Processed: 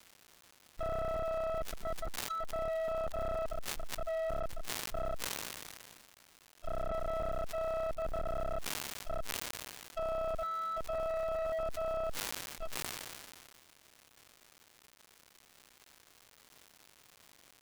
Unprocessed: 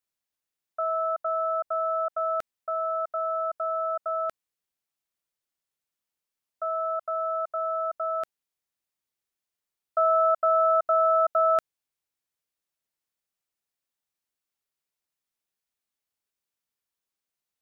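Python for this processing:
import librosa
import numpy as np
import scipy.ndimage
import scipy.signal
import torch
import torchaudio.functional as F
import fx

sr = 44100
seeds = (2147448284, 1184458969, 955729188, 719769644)

y = fx.reverse_delay(x, sr, ms=576, wet_db=0)
y = fx.spec_box(y, sr, start_s=1.62, length_s=0.79, low_hz=220.0, high_hz=1300.0, gain_db=-24)
y = fx.echo_filtered(y, sr, ms=306, feedback_pct=33, hz=860.0, wet_db=-16.0)
y = fx.env_lowpass(y, sr, base_hz=450.0, full_db=-18.5)
y = fx.schmitt(y, sr, flips_db=-25.0)
y = fx.hpss(y, sr, part='percussive', gain_db=-15)
y = 10.0 ** (-36.5 / 20.0) * np.tanh(y / 10.0 ** (-36.5 / 20.0))
y = fx.env_lowpass_down(y, sr, base_hz=1400.0, full_db=-38.0)
y = fx.dmg_crackle(y, sr, seeds[0], per_s=330.0, level_db=-48.0)
y = fx.sustainer(y, sr, db_per_s=28.0)
y = F.gain(torch.from_numpy(y), 3.0).numpy()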